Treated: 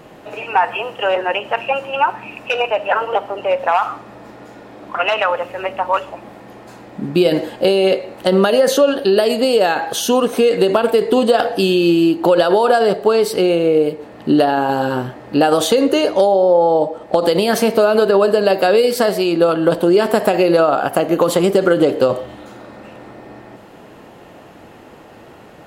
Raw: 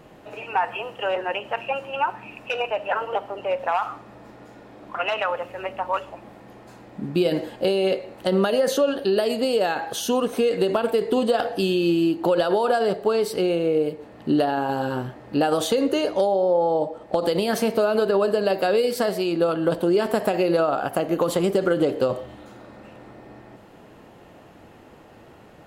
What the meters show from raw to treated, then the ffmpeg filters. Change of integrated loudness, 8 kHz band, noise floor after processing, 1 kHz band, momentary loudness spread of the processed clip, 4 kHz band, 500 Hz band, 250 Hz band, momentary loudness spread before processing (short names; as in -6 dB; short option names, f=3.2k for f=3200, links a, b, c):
+7.5 dB, +8.0 dB, -41 dBFS, +8.0 dB, 8 LU, +8.0 dB, +7.5 dB, +7.0 dB, 8 LU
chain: -af "lowshelf=f=130:g=-6,volume=8dB"